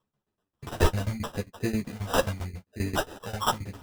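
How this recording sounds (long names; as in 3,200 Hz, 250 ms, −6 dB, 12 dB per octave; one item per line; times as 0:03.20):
tremolo saw down 7.5 Hz, depth 95%
phaser sweep stages 2, 0.82 Hz, lowest notch 280–1,700 Hz
aliases and images of a low sample rate 2,200 Hz, jitter 0%
a shimmering, thickened sound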